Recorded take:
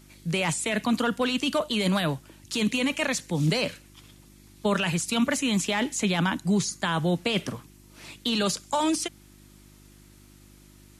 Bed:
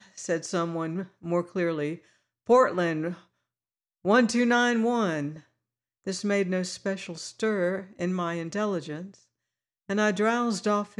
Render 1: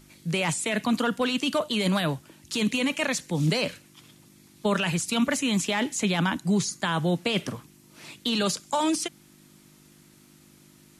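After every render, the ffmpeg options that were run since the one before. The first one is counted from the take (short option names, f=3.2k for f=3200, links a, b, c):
-af "bandreject=f=50:t=h:w=4,bandreject=f=100:t=h:w=4"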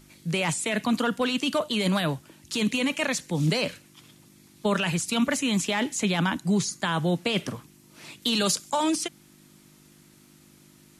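-filter_complex "[0:a]asettb=1/sr,asplit=3[a][b][c];[a]atrim=end=8.224[d];[b]atrim=start=8.22:end=8.7,asetpts=PTS-STARTPTS,afade=t=in:d=0.004:c=qsin,afade=t=out:st=0.476:d=0.004:c=qsin,highshelf=f=4.9k:g=7.5[e];[c]atrim=start=8.696[f];[d][e]acrossfade=d=0.004:c1=hsin:c2=qsin[g];[g][f]acrossfade=d=0.004:c1=qsin:c2=hsin"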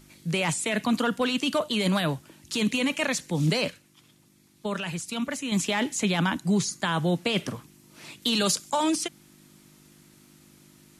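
-filter_complex "[0:a]asplit=3[a][b][c];[a]atrim=end=3.702[d];[b]atrim=start=3.698:end=5.522,asetpts=PTS-STARTPTS,volume=-6dB[e];[c]atrim=start=5.518[f];[d][e]acrossfade=d=0.004:c1=hsin:c2=hsin[g];[g][f]acrossfade=d=0.004:c1=hsin:c2=hsin"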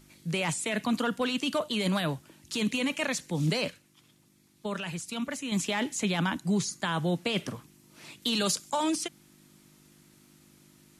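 -af "volume=-3.5dB"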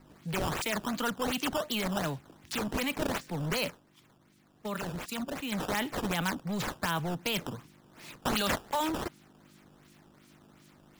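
-filter_complex "[0:a]acrossover=split=720[a][b];[a]asoftclip=type=tanh:threshold=-31dB[c];[b]acrusher=samples=12:mix=1:aa=0.000001:lfo=1:lforange=19.2:lforate=2.7[d];[c][d]amix=inputs=2:normalize=0"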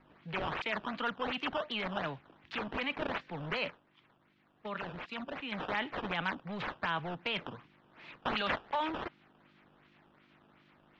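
-af "lowpass=f=3.2k:w=0.5412,lowpass=f=3.2k:w=1.3066,lowshelf=f=460:g=-9.5"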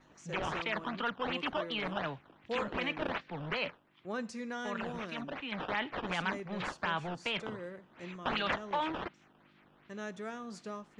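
-filter_complex "[1:a]volume=-17.5dB[a];[0:a][a]amix=inputs=2:normalize=0"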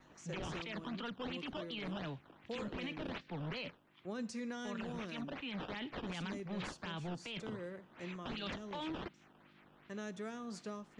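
-filter_complex "[0:a]acrossover=split=410|3000[a][b][c];[b]acompressor=threshold=-47dB:ratio=4[d];[a][d][c]amix=inputs=3:normalize=0,alimiter=level_in=9.5dB:limit=-24dB:level=0:latency=1:release=14,volume=-9.5dB"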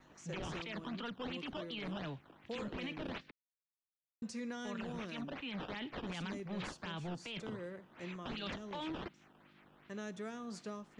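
-filter_complex "[0:a]asplit=3[a][b][c];[a]atrim=end=3.31,asetpts=PTS-STARTPTS,afade=t=out:st=3.306:d=0.004:c=hsin[d];[b]atrim=start=3.31:end=4.22,asetpts=PTS-STARTPTS,volume=0[e];[c]atrim=start=4.22,asetpts=PTS-STARTPTS,afade=t=in:d=0.004:c=hsin[f];[d][e][f]concat=n=3:v=0:a=1"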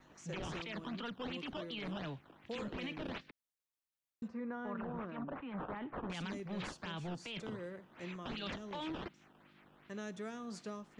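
-filter_complex "[0:a]asettb=1/sr,asplit=3[a][b][c];[a]atrim=end=4.284[d];[b]atrim=start=4.28:end=6.1,asetpts=PTS-STARTPTS,afade=t=in:d=0.004:c=qsin,afade=t=out:st=1.816:d=0.004:c=qsin,lowpass=f=1.2k:t=q:w=1.6[e];[c]atrim=start=6.096[f];[d][e]acrossfade=d=0.004:c1=hsin:c2=qsin[g];[g][f]acrossfade=d=0.004:c1=qsin:c2=hsin"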